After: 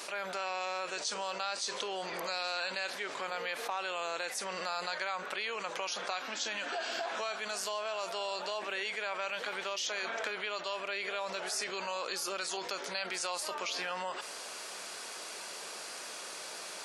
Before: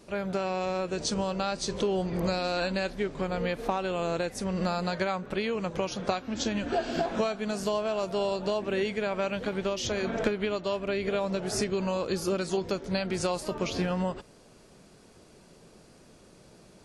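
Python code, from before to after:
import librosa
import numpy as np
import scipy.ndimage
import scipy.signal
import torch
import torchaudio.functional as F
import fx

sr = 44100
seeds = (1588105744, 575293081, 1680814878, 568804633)

y = scipy.signal.sosfilt(scipy.signal.butter(2, 1000.0, 'highpass', fs=sr, output='sos'), x)
y = fx.env_flatten(y, sr, amount_pct=70)
y = F.gain(torch.from_numpy(y), -5.0).numpy()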